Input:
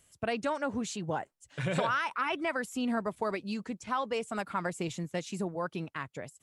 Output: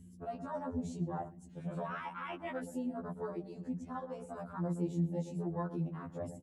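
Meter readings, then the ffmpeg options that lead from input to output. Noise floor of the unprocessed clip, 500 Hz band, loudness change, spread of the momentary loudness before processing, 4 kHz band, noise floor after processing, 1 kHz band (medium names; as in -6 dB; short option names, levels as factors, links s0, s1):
-74 dBFS, -7.0 dB, -6.0 dB, 7 LU, -18.5 dB, -55 dBFS, -9.0 dB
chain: -filter_complex "[0:a]flanger=delay=1:depth=4.8:regen=-23:speed=1.6:shape=sinusoidal,areverse,acompressor=threshold=0.00708:ratio=20,areverse,lowshelf=f=120:g=8,alimiter=level_in=7.94:limit=0.0631:level=0:latency=1:release=38,volume=0.126,aeval=exprs='val(0)+0.00126*(sin(2*PI*60*n/s)+sin(2*PI*2*60*n/s)/2+sin(2*PI*3*60*n/s)/3+sin(2*PI*4*60*n/s)/4+sin(2*PI*5*60*n/s)/5)':c=same,highpass=f=58:w=0.5412,highpass=f=58:w=1.3066,tiltshelf=f=1400:g=5.5,asplit=2[s0][s1];[s1]adelay=120,lowpass=f=1100:p=1,volume=0.355,asplit=2[s2][s3];[s3]adelay=120,lowpass=f=1100:p=1,volume=0.45,asplit=2[s4][s5];[s5]adelay=120,lowpass=f=1100:p=1,volume=0.45,asplit=2[s6][s7];[s7]adelay=120,lowpass=f=1100:p=1,volume=0.45,asplit=2[s8][s9];[s9]adelay=120,lowpass=f=1100:p=1,volume=0.45[s10];[s2][s4][s6][s8][s10]amix=inputs=5:normalize=0[s11];[s0][s11]amix=inputs=2:normalize=0,crystalizer=i=3.5:c=0,afwtdn=0.00355,afftfilt=real='re*2*eq(mod(b,4),0)':imag='im*2*eq(mod(b,4),0)':win_size=2048:overlap=0.75,volume=2.82"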